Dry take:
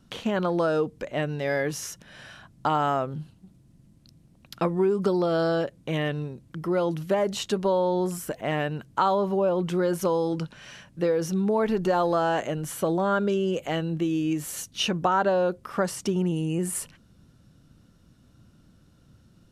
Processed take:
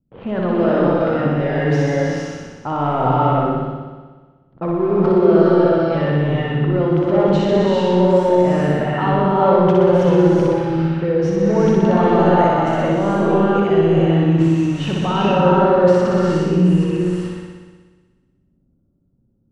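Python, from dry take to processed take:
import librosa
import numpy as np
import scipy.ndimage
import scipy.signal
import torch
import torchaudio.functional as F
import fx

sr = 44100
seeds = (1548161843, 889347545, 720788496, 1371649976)

p1 = fx.transient(x, sr, attack_db=-3, sustain_db=11)
p2 = fx.high_shelf(p1, sr, hz=3600.0, db=10.0)
p3 = fx.leveller(p2, sr, passes=3)
p4 = fx.env_lowpass(p3, sr, base_hz=450.0, full_db=-11.5)
p5 = fx.spacing_loss(p4, sr, db_at_10k=43)
p6 = p5 + fx.room_flutter(p5, sr, wall_m=10.5, rt60_s=1.4, dry=0)
p7 = fx.rev_gated(p6, sr, seeds[0], gate_ms=460, shape='rising', drr_db=-3.0)
y = p7 * librosa.db_to_amplitude(-6.5)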